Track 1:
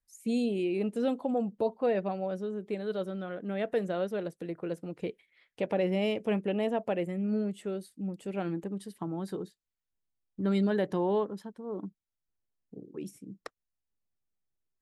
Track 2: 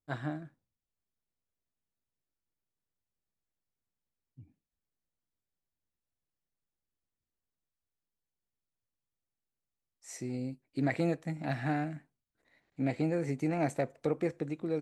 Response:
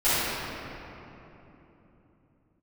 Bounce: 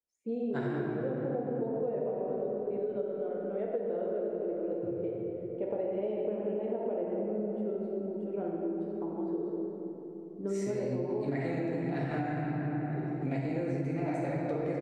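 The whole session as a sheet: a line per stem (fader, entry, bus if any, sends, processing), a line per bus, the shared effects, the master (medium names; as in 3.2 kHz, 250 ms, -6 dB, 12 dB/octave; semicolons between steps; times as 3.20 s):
-1.5 dB, 0.00 s, send -13 dB, band-pass filter 430 Hz, Q 1.5
+0.5 dB, 0.45 s, send -10 dB, none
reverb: on, RT60 3.3 s, pre-delay 4 ms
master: treble shelf 7.1 kHz -10 dB; compression 12:1, threshold -29 dBFS, peak gain reduction 13.5 dB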